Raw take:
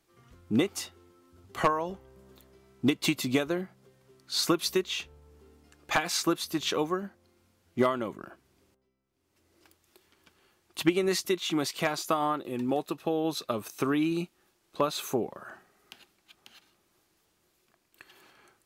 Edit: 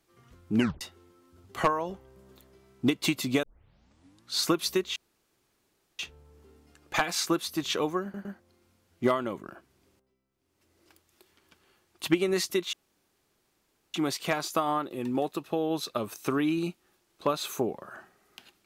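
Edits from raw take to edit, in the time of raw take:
0.56 s: tape stop 0.25 s
3.43 s: tape start 0.91 s
4.96 s: insert room tone 1.03 s
7.00 s: stutter 0.11 s, 3 plays
11.48 s: insert room tone 1.21 s

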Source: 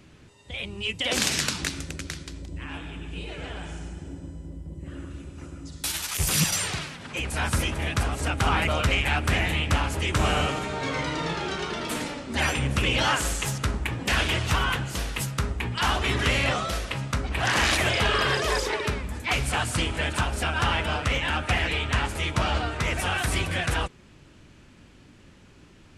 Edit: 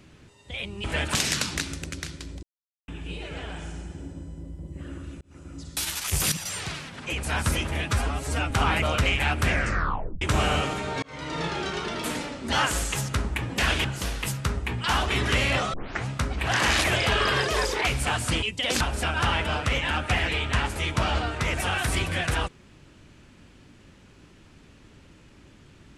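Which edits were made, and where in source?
0.84–1.22 s: swap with 19.89–20.20 s
2.50–2.95 s: mute
5.28–5.62 s: fade in
6.39–6.92 s: fade in, from -13 dB
7.93–8.36 s: stretch 1.5×
9.31 s: tape stop 0.76 s
10.88–11.29 s: fade in
12.38–13.02 s: delete
14.34–14.78 s: delete
16.67 s: tape start 0.34 s
18.75–19.28 s: delete

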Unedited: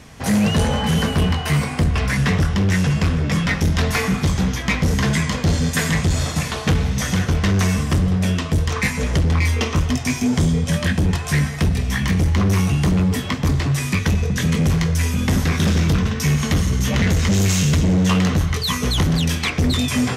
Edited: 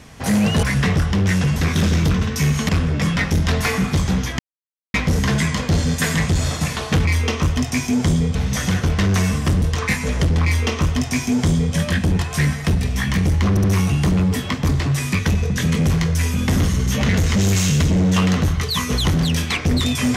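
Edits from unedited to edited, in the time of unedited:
0.63–2.06 s: delete
4.69 s: insert silence 0.55 s
8.07–8.56 s: delete
9.38–10.68 s: copy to 6.80 s
12.44 s: stutter 0.07 s, 3 plays
15.40–16.53 s: move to 2.99 s

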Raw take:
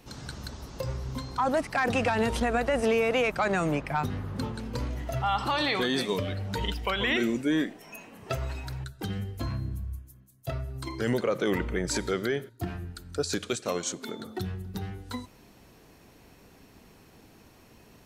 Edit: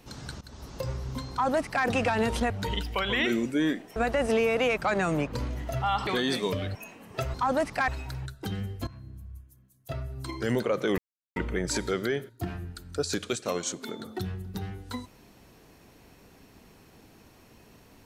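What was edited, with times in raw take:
0.41–0.76 s: fade in equal-power, from -19.5 dB
1.31–1.85 s: copy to 8.46 s
3.86–4.72 s: delete
5.47–5.73 s: delete
6.41–7.87 s: move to 2.50 s
9.45–10.85 s: fade in, from -16.5 dB
11.56 s: insert silence 0.38 s

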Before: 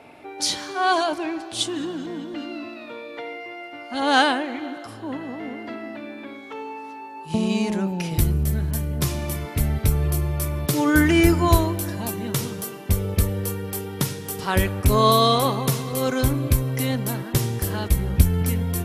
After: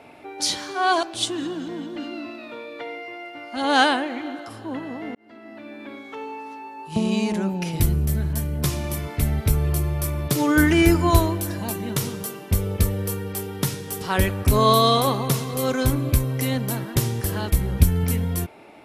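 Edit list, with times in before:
1.03–1.41 s: delete
5.53–6.32 s: fade in

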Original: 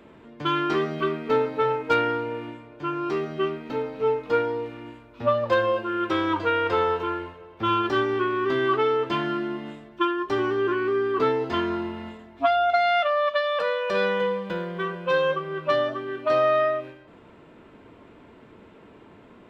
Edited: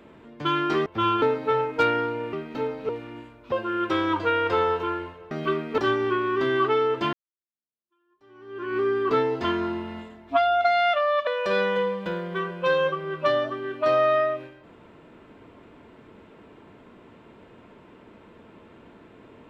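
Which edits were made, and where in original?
0.86–1.33 s: swap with 7.51–7.87 s
2.44–3.48 s: delete
4.04–4.59 s: delete
5.22–5.72 s: delete
9.22–10.86 s: fade in exponential
13.36–13.71 s: delete

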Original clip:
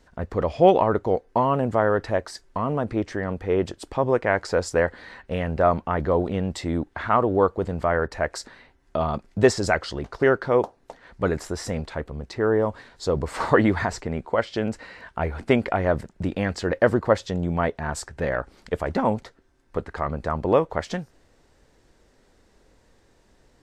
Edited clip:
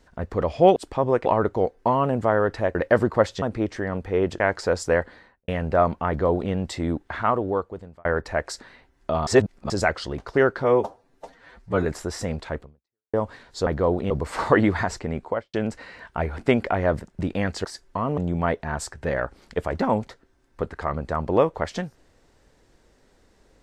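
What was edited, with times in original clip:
2.25–2.78 s: swap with 16.66–17.33 s
3.76–4.26 s: move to 0.76 s
4.83–5.34 s: studio fade out
5.94–6.38 s: copy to 13.12 s
6.97–7.91 s: fade out
9.13–9.56 s: reverse
10.50–11.31 s: stretch 1.5×
12.06–12.59 s: fade out exponential
14.25–14.55 s: studio fade out

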